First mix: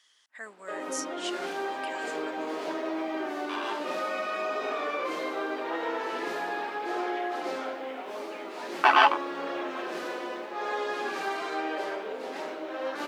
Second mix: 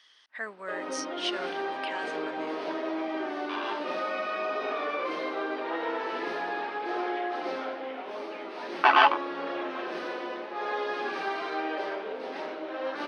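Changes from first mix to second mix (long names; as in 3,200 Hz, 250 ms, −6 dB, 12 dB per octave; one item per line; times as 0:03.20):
speech +6.0 dB
master: add Savitzky-Golay smoothing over 15 samples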